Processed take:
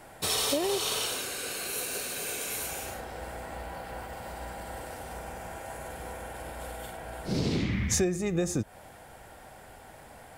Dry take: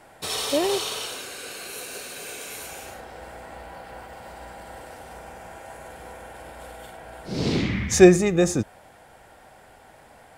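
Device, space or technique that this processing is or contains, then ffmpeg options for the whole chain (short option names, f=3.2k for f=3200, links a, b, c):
ASMR close-microphone chain: -af "lowshelf=f=190:g=5,acompressor=threshold=-25dB:ratio=8,highshelf=f=9.9k:g=8"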